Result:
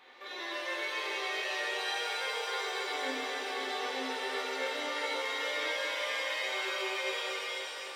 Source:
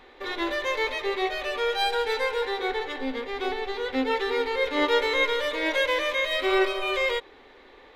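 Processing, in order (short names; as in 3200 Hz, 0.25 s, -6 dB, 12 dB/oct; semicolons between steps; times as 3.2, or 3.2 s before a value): HPF 970 Hz 6 dB/oct; reverse; compressor 6:1, threshold -37 dBFS, peak gain reduction 15 dB; reverse; split-band echo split 2700 Hz, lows 0.269 s, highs 0.357 s, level -7 dB; shimmer reverb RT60 3.7 s, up +7 st, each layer -8 dB, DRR -7 dB; gain -4.5 dB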